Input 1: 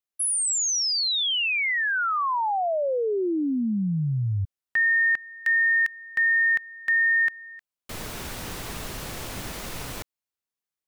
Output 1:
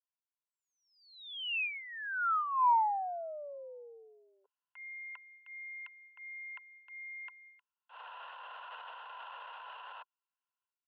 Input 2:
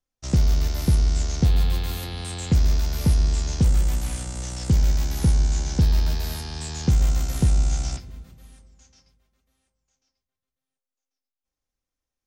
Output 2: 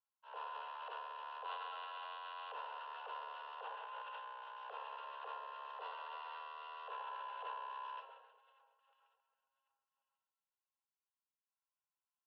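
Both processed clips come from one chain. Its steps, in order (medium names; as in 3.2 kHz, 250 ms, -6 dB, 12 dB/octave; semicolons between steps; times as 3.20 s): vowel filter a; transient shaper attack -10 dB, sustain +10 dB; mistuned SSB +290 Hz 170–3100 Hz; trim +1.5 dB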